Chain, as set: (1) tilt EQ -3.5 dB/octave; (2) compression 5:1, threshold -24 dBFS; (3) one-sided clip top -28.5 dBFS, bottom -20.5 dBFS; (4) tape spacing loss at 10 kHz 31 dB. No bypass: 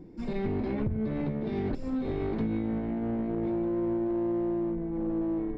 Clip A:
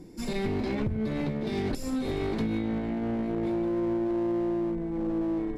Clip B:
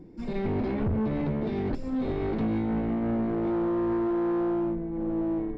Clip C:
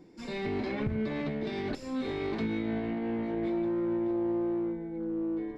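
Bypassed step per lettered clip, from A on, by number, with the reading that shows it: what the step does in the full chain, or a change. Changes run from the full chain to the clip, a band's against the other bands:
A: 4, 2 kHz band +5.0 dB; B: 2, crest factor change -2.5 dB; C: 1, 2 kHz band +7.5 dB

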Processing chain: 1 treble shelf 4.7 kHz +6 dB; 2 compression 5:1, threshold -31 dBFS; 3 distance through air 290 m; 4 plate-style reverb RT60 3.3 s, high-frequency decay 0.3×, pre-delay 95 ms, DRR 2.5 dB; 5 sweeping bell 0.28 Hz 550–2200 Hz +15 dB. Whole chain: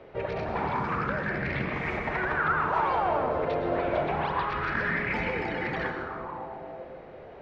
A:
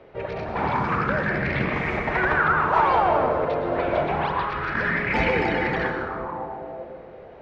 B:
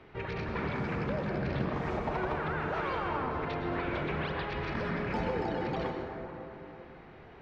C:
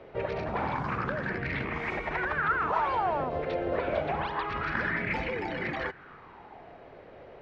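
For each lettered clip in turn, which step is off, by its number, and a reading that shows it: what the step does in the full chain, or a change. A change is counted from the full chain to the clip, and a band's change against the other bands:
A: 2, mean gain reduction 4.0 dB; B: 5, 2 kHz band -6.5 dB; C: 4, momentary loudness spread change +9 LU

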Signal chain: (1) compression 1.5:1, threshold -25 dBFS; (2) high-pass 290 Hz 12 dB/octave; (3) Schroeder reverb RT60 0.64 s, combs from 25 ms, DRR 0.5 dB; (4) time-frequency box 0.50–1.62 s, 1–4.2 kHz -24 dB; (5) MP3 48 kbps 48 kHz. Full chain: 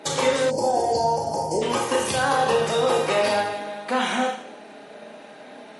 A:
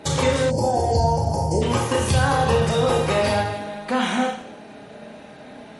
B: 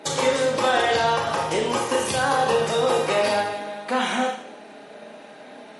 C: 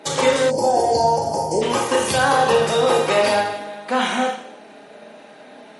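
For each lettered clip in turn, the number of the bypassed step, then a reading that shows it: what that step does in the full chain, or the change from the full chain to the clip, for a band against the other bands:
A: 2, 125 Hz band +14.0 dB; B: 4, 2 kHz band +2.0 dB; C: 1, mean gain reduction 2.5 dB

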